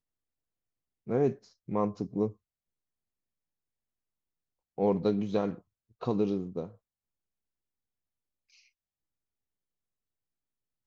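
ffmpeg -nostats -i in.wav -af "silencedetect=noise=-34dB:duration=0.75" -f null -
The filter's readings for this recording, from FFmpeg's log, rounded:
silence_start: 0.00
silence_end: 1.09 | silence_duration: 1.09
silence_start: 2.29
silence_end: 4.78 | silence_duration: 2.50
silence_start: 6.65
silence_end: 10.87 | silence_duration: 4.22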